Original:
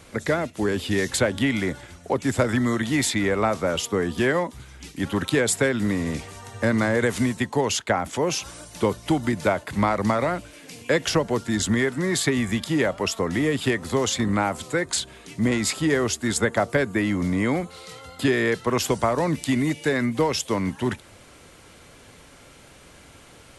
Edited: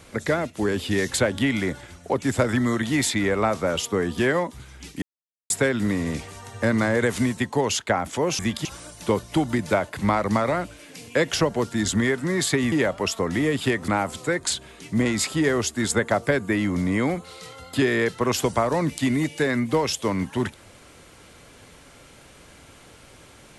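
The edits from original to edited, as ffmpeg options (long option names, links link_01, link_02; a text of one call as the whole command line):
ffmpeg -i in.wav -filter_complex "[0:a]asplit=7[link_01][link_02][link_03][link_04][link_05][link_06][link_07];[link_01]atrim=end=5.02,asetpts=PTS-STARTPTS,afade=type=out:start_time=5.016:duration=0.004:curve=hsin[link_08];[link_02]atrim=start=5.02:end=5.5,asetpts=PTS-STARTPTS,volume=0[link_09];[link_03]atrim=start=5.5:end=8.392,asetpts=PTS-STARTPTS,afade=type=in:duration=0.004:curve=hsin[link_10];[link_04]atrim=start=12.458:end=12.722[link_11];[link_05]atrim=start=8.388:end=12.462[link_12];[link_06]atrim=start=12.718:end=13.882[link_13];[link_07]atrim=start=14.338[link_14];[link_08][link_09][link_10]concat=n=3:v=0:a=1[link_15];[link_15][link_11]acrossfade=duration=0.004:curve1=hsin:curve2=hsin[link_16];[link_16][link_12]acrossfade=duration=0.004:curve1=hsin:curve2=hsin[link_17];[link_17][link_13]acrossfade=duration=0.004:curve1=hsin:curve2=hsin[link_18];[link_18][link_14]acrossfade=duration=0.004:curve1=hsin:curve2=hsin" out.wav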